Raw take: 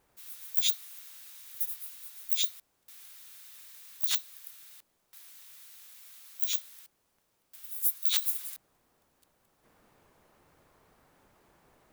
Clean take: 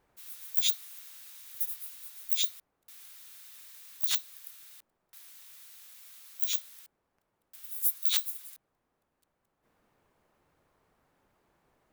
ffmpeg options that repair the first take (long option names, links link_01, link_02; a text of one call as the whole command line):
ffmpeg -i in.wav -af "agate=range=-21dB:threshold=-65dB,asetnsamples=nb_out_samples=441:pad=0,asendcmd='8.22 volume volume -7dB',volume=0dB" out.wav